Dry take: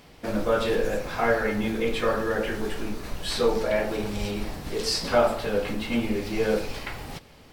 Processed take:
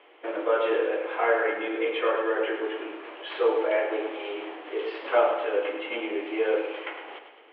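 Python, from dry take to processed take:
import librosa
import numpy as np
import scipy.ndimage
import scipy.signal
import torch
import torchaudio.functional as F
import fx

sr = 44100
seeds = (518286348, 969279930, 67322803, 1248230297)

p1 = scipy.signal.sosfilt(scipy.signal.cheby1(5, 1.0, [320.0, 3200.0], 'bandpass', fs=sr, output='sos'), x)
y = p1 + fx.echo_feedback(p1, sr, ms=105, feedback_pct=50, wet_db=-8.5, dry=0)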